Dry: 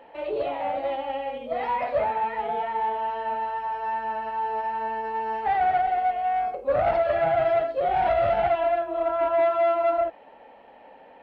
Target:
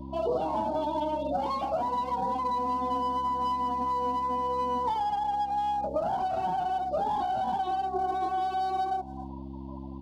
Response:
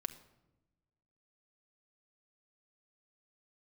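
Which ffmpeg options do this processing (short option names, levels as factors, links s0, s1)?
-af "lowshelf=f=430:g=-6,bandreject=f=60:t=h:w=6,bandreject=f=120:t=h:w=6,bandreject=f=180:t=h:w=6,bandreject=f=240:t=h:w=6,bandreject=f=300:t=h:w=6,bandreject=f=360:t=h:w=6,bandreject=f=420:t=h:w=6,bandreject=f=480:t=h:w=6,bandreject=f=540:t=h:w=6,bandreject=f=600:t=h:w=6,aeval=exprs='clip(val(0),-1,0.0141)':c=same,highpass=55,aecho=1:1:309:0.0668,afftdn=nr=17:nf=-38,aeval=exprs='val(0)+0.00447*(sin(2*PI*60*n/s)+sin(2*PI*2*60*n/s)/2+sin(2*PI*3*60*n/s)/3+sin(2*PI*4*60*n/s)/4+sin(2*PI*5*60*n/s)/5)':c=same,acompressor=threshold=0.0178:ratio=6,firequalizer=gain_entry='entry(110,0);entry(220,12);entry(360,8);entry(560,4);entry(890,4);entry(1600,-19);entry(2400,-4);entry(3900,14)':delay=0.05:min_phase=1,asetrate=49392,aresample=44100,volume=1.78"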